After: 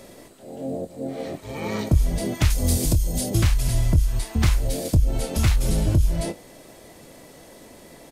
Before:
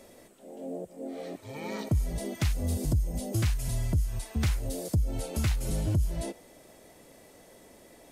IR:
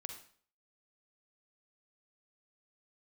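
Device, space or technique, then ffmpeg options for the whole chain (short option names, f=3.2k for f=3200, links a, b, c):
octave pedal: -filter_complex "[0:a]asplit=2[a][b];[b]adelay=24,volume=-12dB[c];[a][c]amix=inputs=2:normalize=0,asplit=2[d][e];[e]asetrate=22050,aresample=44100,atempo=2,volume=-6dB[f];[d][f]amix=inputs=2:normalize=0,asettb=1/sr,asplit=3[g][h][i];[g]atrim=end=2.504[j];[h]atrim=start=2.5:end=3.3,asetpts=PTS-STARTPTS,afade=t=in:d=0.004:c=qsin,afade=t=out:st=0.796:d=0.004:c=qsin,bass=f=250:g=-2,treble=f=4k:g=8[k];[i]atrim=start=3.296[l];[j][k]acrossfade=d=0.004:c1=hsin:c2=qsin[m];[m][l]acrossfade=d=0.004:c1=qsin:c2=hsin,volume=7dB"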